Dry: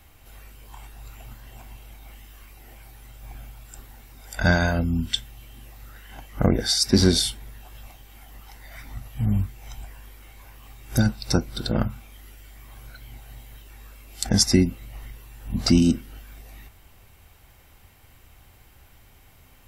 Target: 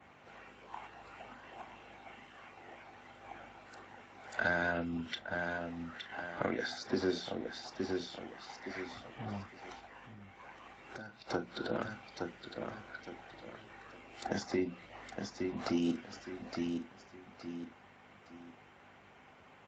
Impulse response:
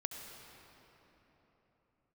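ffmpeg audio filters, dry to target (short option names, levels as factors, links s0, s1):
-filter_complex "[0:a]bandreject=f=60:t=h:w=6,bandreject=f=120:t=h:w=6,bandreject=f=180:t=h:w=6,bandreject=f=240:t=h:w=6,adynamicequalizer=threshold=0.00794:dfrequency=4400:dqfactor=1.5:tfrequency=4400:tqfactor=1.5:attack=5:release=100:ratio=0.375:range=2:mode=boostabove:tftype=bell,asoftclip=type=tanh:threshold=0.668,aecho=1:1:865|1730|2595:0.224|0.0694|0.0215,acrossover=split=470|1500[s0][s1][s2];[s0]acompressor=threshold=0.0282:ratio=4[s3];[s1]acompressor=threshold=0.01:ratio=4[s4];[s2]acompressor=threshold=0.0178:ratio=4[s5];[s3][s4][s5]amix=inputs=3:normalize=0[s6];[1:a]atrim=start_sample=2205,atrim=end_sample=3528,asetrate=88200,aresample=44100[s7];[s6][s7]afir=irnorm=-1:irlink=0,aeval=exprs='val(0)+0.001*(sin(2*PI*50*n/s)+sin(2*PI*2*50*n/s)/2+sin(2*PI*3*50*n/s)/3+sin(2*PI*4*50*n/s)/4+sin(2*PI*5*50*n/s)/5)':c=same,asplit=3[s8][s9][s10];[s8]afade=t=out:st=9.79:d=0.02[s11];[s9]acompressor=threshold=0.00501:ratio=10,afade=t=in:st=9.79:d=0.02,afade=t=out:st=11.27:d=0.02[s12];[s10]afade=t=in:st=11.27:d=0.02[s13];[s11][s12][s13]amix=inputs=3:normalize=0,acrossover=split=290 2500:gain=0.141 1 0.158[s14][s15][s16];[s14][s15][s16]amix=inputs=3:normalize=0,volume=3.55" -ar 16000 -c:a libspeex -b:a 17k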